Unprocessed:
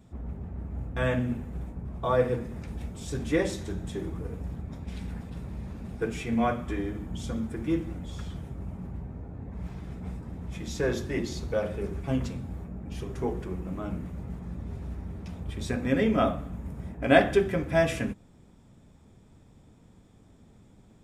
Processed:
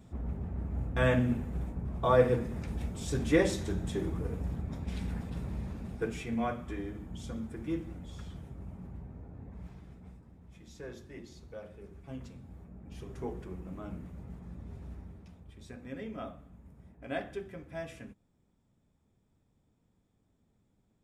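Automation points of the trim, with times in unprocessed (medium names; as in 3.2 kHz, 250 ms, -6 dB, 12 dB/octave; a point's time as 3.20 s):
5.55 s +0.5 dB
6.44 s -7 dB
9.46 s -7 dB
10.34 s -17 dB
11.87 s -17 dB
13.13 s -8 dB
14.97 s -8 dB
15.47 s -17 dB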